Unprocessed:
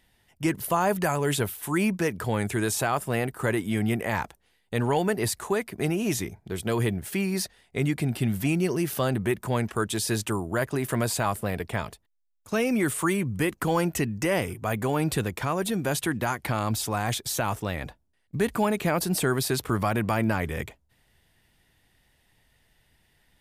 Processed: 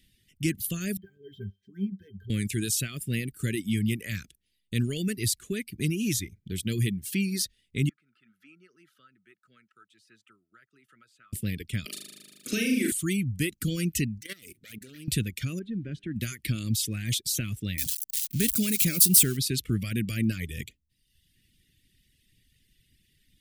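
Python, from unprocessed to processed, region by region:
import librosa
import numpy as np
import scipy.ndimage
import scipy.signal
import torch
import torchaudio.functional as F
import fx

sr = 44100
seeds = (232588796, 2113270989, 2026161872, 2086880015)

y = fx.chain(x, sr, fx.octave_resonator(note='G', decay_s=0.19),
    fx.resample_linear(factor=3), at=(0.97, 2.3))
y = fx.chain(y, sr, fx.bandpass_q(hz=1300.0, q=15.0),
    fx.band_squash(depth_pct=40), at=(7.89, 11.33))
y = fx.chain(y, sr, fx.highpass(hz=240.0, slope=24),
    fx.room_flutter(wall_m=6.7, rt60_s=1.2),
    fx.band_squash(depth_pct=70), at=(11.85, 12.92))
y = fx.chain(y, sr, fx.lower_of_two(delay_ms=0.5),
    fx.highpass(hz=490.0, slope=6),
    fx.level_steps(step_db=14), at=(14.21, 15.08))
y = fx.chain(y, sr, fx.delta_hold(step_db=-47.5),
    fx.lowpass(hz=1500.0, slope=12),
    fx.comb_fb(f0_hz=99.0, decay_s=0.93, harmonics='all', damping=0.0, mix_pct=40), at=(15.59, 16.16))
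y = fx.chain(y, sr, fx.crossing_spikes(level_db=-23.0),
    fx.high_shelf(hz=4900.0, db=7.5), at=(17.78, 19.37))
y = fx.dereverb_blind(y, sr, rt60_s=0.92)
y = scipy.signal.sosfilt(scipy.signal.cheby1(2, 1.0, [270.0, 2800.0], 'bandstop', fs=sr, output='sos'), y)
y = fx.dynamic_eq(y, sr, hz=380.0, q=0.8, threshold_db=-44.0, ratio=4.0, max_db=-3)
y = y * 10.0 ** (3.0 / 20.0)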